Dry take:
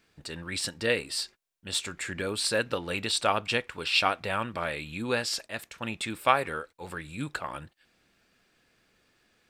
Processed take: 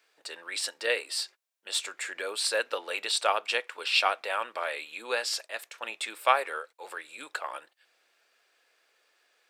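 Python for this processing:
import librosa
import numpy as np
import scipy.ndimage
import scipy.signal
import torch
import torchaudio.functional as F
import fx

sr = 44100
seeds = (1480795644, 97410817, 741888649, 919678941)

y = scipy.signal.sosfilt(scipy.signal.butter(4, 460.0, 'highpass', fs=sr, output='sos'), x)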